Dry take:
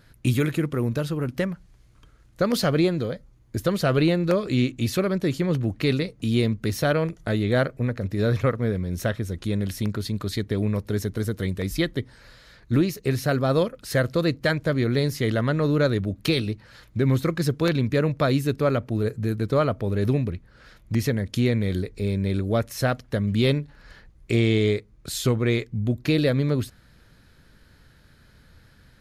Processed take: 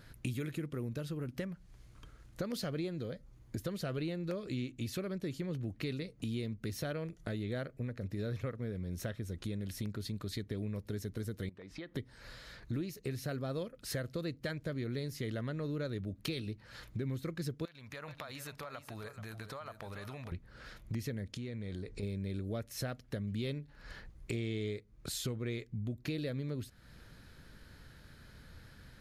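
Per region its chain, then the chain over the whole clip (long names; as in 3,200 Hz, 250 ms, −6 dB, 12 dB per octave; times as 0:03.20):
0:11.49–0:11.95: high-pass filter 590 Hz 6 dB per octave + head-to-tape spacing loss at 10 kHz 29 dB + downward compressor, threshold −39 dBFS
0:17.65–0:20.32: low shelf with overshoot 550 Hz −13.5 dB, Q 1.5 + downward compressor, threshold −40 dBFS + single-tap delay 431 ms −11.5 dB
0:21.29–0:22.03: low-pass filter 9,700 Hz 24 dB per octave + downward compressor, threshold −31 dBFS
whole clip: dynamic equaliser 970 Hz, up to −5 dB, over −41 dBFS, Q 1.2; downward compressor 3 to 1, threshold −39 dBFS; level −1 dB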